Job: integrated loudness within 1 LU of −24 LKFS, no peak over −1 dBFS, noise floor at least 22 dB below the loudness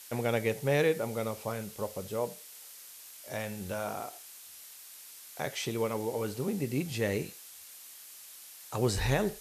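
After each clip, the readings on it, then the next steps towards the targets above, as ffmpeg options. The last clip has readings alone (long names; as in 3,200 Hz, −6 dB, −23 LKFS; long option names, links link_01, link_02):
background noise floor −50 dBFS; target noise floor −55 dBFS; integrated loudness −33.0 LKFS; sample peak −16.0 dBFS; target loudness −24.0 LKFS
→ -af "afftdn=noise_reduction=6:noise_floor=-50"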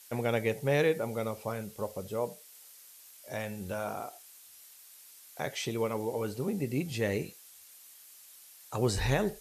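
background noise floor −55 dBFS; integrated loudness −33.0 LKFS; sample peak −16.5 dBFS; target loudness −24.0 LKFS
→ -af "volume=9dB"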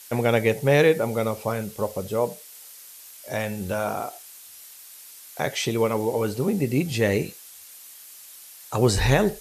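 integrated loudness −24.0 LKFS; sample peak −7.5 dBFS; background noise floor −46 dBFS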